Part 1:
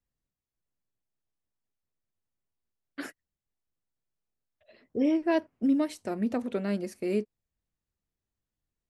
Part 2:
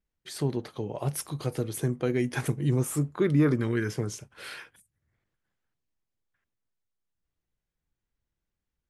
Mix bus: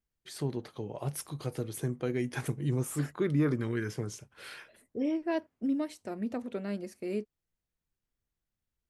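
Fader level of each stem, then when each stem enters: -5.5, -5.0 dB; 0.00, 0.00 s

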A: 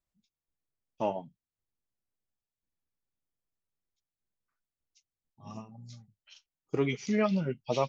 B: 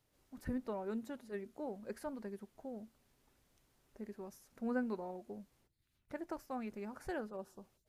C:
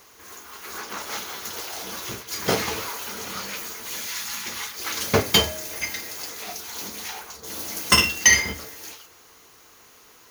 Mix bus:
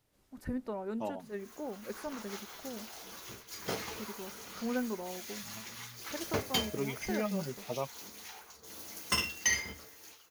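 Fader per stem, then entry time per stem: -7.5, +2.5, -14.0 dB; 0.00, 0.00, 1.20 s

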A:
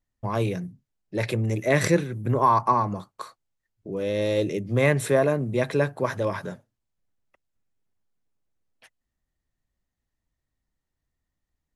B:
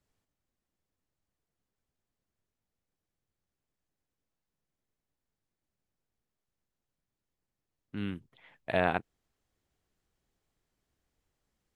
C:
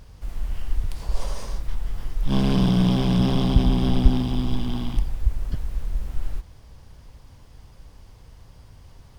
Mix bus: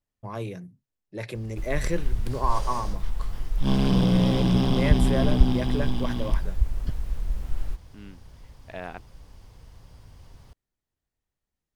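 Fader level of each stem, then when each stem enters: -8.0, -9.5, -1.5 dB; 0.00, 0.00, 1.35 s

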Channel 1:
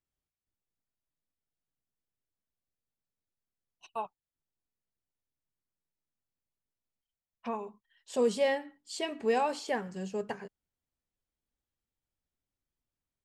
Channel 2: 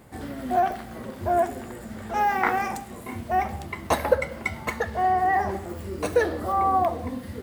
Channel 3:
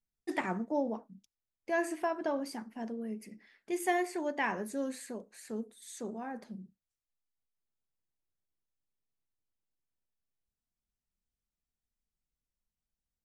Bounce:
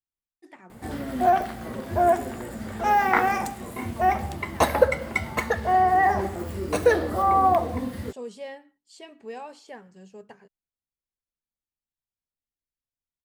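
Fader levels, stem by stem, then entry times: -10.0, +2.5, -15.0 dB; 0.00, 0.70, 0.15 s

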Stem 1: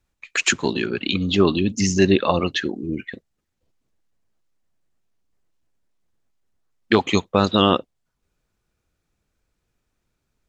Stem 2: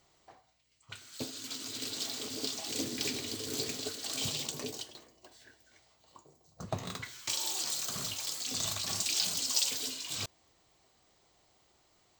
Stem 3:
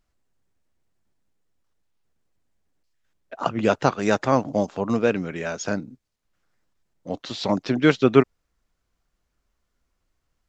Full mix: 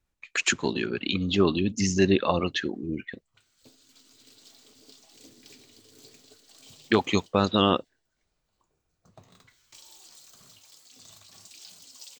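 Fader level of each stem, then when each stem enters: -5.0 dB, -17.0 dB, off; 0.00 s, 2.45 s, off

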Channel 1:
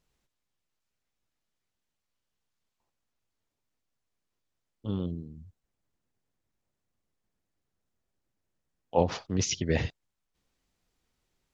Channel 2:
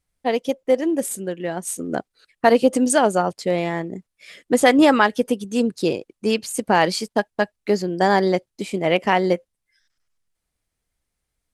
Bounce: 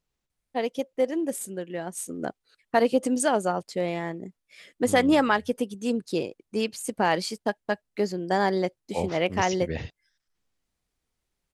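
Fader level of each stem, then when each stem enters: -5.0, -6.5 dB; 0.00, 0.30 s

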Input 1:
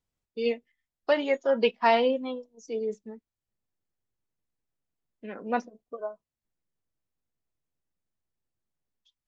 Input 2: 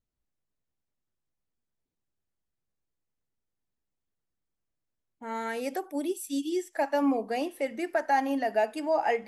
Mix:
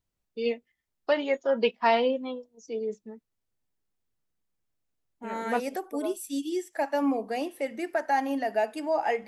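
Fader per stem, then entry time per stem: -1.0, -0.5 dB; 0.00, 0.00 s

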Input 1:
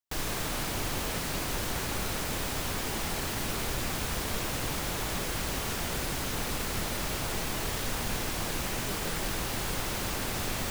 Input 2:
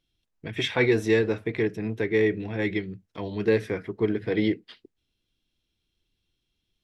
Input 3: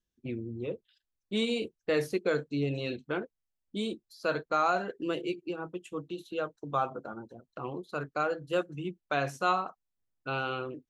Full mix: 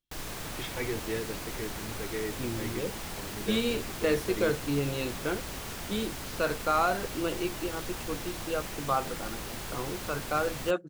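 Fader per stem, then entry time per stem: -6.0, -13.0, +1.0 dB; 0.00, 0.00, 2.15 s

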